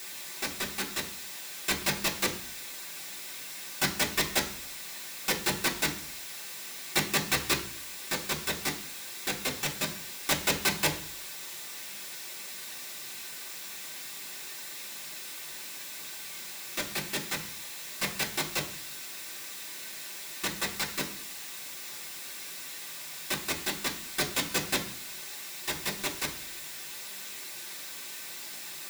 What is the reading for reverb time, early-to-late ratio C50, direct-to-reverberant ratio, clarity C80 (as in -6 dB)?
0.50 s, 12.0 dB, -4.0 dB, 15.5 dB